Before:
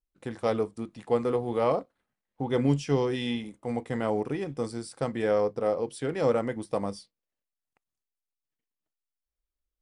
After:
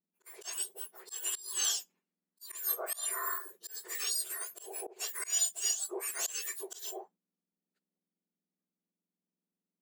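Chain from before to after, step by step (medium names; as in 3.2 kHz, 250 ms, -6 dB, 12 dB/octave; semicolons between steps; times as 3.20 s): spectrum inverted on a logarithmic axis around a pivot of 1.9 kHz; slow attack 176 ms; gate -60 dBFS, range -9 dB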